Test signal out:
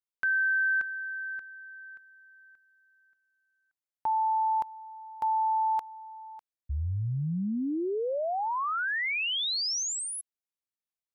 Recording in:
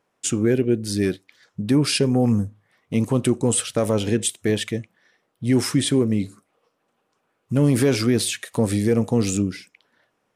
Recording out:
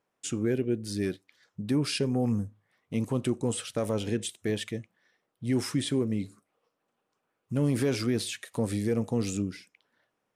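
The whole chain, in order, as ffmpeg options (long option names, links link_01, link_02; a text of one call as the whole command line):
ffmpeg -i in.wav -filter_complex "[0:a]acrossover=split=6500[link_01][link_02];[link_02]acompressor=threshold=-29dB:ratio=4:attack=1:release=60[link_03];[link_01][link_03]amix=inputs=2:normalize=0,volume=-8.5dB" out.wav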